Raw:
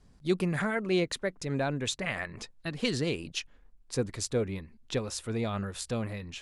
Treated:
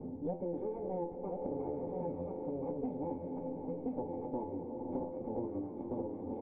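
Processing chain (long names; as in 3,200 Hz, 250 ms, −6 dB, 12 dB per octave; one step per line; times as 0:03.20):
on a send: single-tap delay 1,027 ms −4.5 dB
on the sum: full-wave rectification
parametric band 520 Hz +11.5 dB 0.59 octaves
tuned comb filter 86 Hz, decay 0.44 s, harmonics all, mix 80%
in parallel at −11 dB: sample-rate reduction 3,500 Hz
on the sum: formant resonators in series u
notch comb filter 330 Hz
comb and all-pass reverb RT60 4.3 s, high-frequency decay 0.35×, pre-delay 95 ms, DRR 9 dB
multiband upward and downward compressor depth 100%
level +11.5 dB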